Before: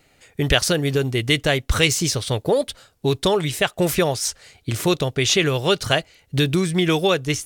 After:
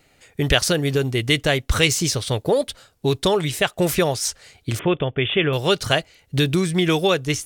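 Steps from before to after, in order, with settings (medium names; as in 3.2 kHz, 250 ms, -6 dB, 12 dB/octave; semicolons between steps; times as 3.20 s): 4.79–5.53 s: Chebyshev low-pass 3.5 kHz, order 10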